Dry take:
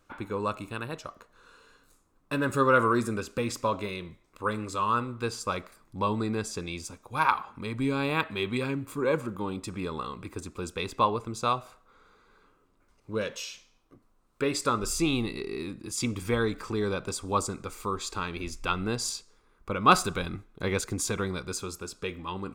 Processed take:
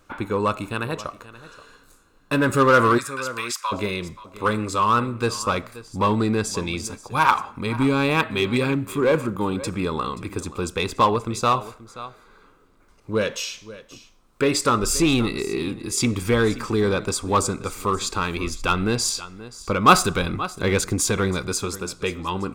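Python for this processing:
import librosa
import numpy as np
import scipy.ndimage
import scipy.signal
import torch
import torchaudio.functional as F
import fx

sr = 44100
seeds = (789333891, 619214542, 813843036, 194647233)

p1 = fx.highpass(x, sr, hz=1100.0, slope=24, at=(2.97, 3.71), fade=0.02)
p2 = p1 + 10.0 ** (-17.5 / 20.0) * np.pad(p1, (int(529 * sr / 1000.0), 0))[:len(p1)]
p3 = 10.0 ** (-24.0 / 20.0) * (np.abs((p2 / 10.0 ** (-24.0 / 20.0) + 3.0) % 4.0 - 2.0) - 1.0)
p4 = p2 + (p3 * librosa.db_to_amplitude(-9.0))
y = p4 * librosa.db_to_amplitude(6.0)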